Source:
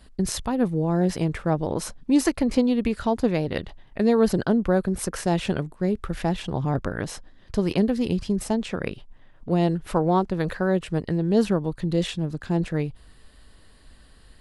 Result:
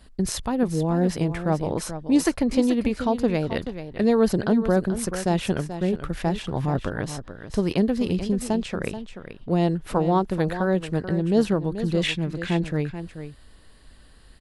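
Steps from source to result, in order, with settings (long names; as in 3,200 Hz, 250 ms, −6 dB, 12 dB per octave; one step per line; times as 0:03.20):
0:12.03–0:12.57: parametric band 2,200 Hz +13.5 dB 0.94 octaves
single-tap delay 433 ms −11 dB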